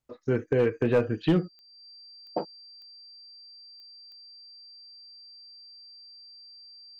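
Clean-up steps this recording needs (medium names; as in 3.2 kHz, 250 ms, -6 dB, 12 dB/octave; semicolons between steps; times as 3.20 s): clip repair -15.5 dBFS; de-click; band-stop 4.7 kHz, Q 30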